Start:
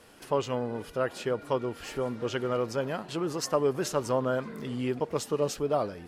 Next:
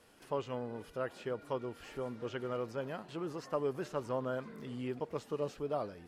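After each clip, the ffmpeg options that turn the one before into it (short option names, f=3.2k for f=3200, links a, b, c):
-filter_complex "[0:a]acrossover=split=3200[a][b];[b]acompressor=threshold=-49dB:ratio=4:attack=1:release=60[c];[a][c]amix=inputs=2:normalize=0,volume=-8.5dB"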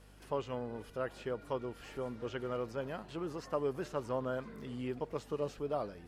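-af "aeval=exprs='val(0)+0.00126*(sin(2*PI*50*n/s)+sin(2*PI*2*50*n/s)/2+sin(2*PI*3*50*n/s)/3+sin(2*PI*4*50*n/s)/4+sin(2*PI*5*50*n/s)/5)':c=same"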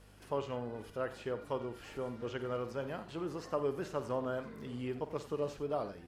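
-af "aecho=1:1:50|88:0.237|0.178"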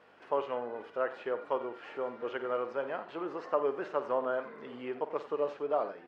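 -af "highpass=460,lowpass=2.1k,volume=7dB"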